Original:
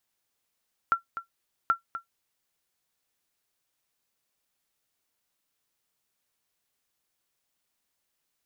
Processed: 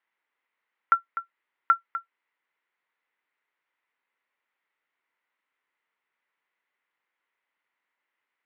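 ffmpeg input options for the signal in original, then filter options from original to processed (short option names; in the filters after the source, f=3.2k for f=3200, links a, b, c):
-f lavfi -i "aevalsrc='0.211*(sin(2*PI*1360*mod(t,0.78))*exp(-6.91*mod(t,0.78)/0.12)+0.251*sin(2*PI*1360*max(mod(t,0.78)-0.25,0))*exp(-6.91*max(mod(t,0.78)-0.25,0)/0.12))':d=1.56:s=44100"
-af "highpass=340,equalizer=f=670:t=q:w=4:g=-4,equalizer=f=970:t=q:w=4:g=6,equalizer=f=1.4k:t=q:w=4:g=4,equalizer=f=2k:t=q:w=4:g=10,lowpass=f=2.9k:w=0.5412,lowpass=f=2.9k:w=1.3066"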